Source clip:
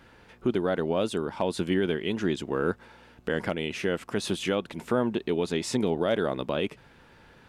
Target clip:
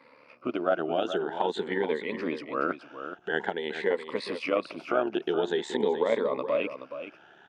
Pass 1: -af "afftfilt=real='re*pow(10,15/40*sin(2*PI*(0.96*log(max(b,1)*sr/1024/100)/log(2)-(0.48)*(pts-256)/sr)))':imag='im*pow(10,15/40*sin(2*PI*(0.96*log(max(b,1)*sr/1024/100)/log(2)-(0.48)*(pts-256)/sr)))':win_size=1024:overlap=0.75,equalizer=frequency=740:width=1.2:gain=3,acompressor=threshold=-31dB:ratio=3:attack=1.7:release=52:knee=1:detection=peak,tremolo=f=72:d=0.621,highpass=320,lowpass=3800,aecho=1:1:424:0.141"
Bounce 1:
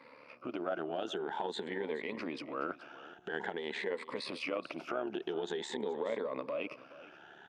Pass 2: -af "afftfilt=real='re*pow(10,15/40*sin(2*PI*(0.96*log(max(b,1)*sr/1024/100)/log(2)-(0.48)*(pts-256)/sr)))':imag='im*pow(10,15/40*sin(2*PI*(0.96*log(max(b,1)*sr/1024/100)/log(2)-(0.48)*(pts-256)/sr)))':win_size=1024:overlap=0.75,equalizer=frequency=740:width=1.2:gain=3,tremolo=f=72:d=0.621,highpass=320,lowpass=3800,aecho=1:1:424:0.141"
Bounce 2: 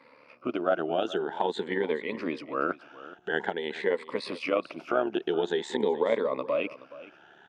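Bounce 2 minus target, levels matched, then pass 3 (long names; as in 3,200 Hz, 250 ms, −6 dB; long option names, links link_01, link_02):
echo-to-direct −7 dB
-af "afftfilt=real='re*pow(10,15/40*sin(2*PI*(0.96*log(max(b,1)*sr/1024/100)/log(2)-(0.48)*(pts-256)/sr)))':imag='im*pow(10,15/40*sin(2*PI*(0.96*log(max(b,1)*sr/1024/100)/log(2)-(0.48)*(pts-256)/sr)))':win_size=1024:overlap=0.75,equalizer=frequency=740:width=1.2:gain=3,tremolo=f=72:d=0.621,highpass=320,lowpass=3800,aecho=1:1:424:0.316"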